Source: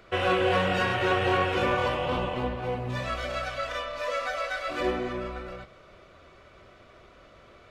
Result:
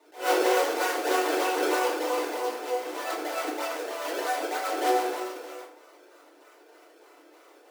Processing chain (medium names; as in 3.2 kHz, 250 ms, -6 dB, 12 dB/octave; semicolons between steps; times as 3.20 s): 2.83–5.25 s: peaking EQ 790 Hz +9 dB 0.34 oct; decimation with a swept rate 26×, swing 160% 3.2 Hz; elliptic high-pass 330 Hz, stop band 50 dB; FDN reverb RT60 0.57 s, low-frequency decay 1×, high-frequency decay 0.7×, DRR -7 dB; attacks held to a fixed rise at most 180 dB/s; trim -7 dB